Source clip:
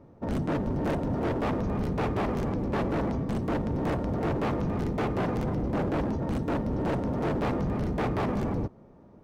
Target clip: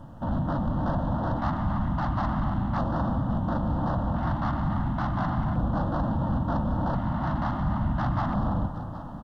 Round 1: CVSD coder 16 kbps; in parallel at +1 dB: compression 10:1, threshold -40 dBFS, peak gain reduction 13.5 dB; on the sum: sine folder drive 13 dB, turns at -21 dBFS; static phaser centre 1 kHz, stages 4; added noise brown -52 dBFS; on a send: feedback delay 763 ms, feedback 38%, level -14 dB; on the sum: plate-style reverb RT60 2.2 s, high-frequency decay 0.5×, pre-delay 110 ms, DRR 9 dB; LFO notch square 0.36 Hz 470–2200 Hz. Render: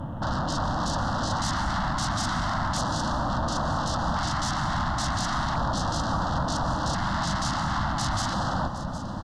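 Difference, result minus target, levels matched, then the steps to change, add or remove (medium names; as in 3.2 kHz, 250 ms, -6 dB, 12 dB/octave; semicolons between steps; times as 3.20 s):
sine folder: distortion +22 dB
change: sine folder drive 2 dB, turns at -21 dBFS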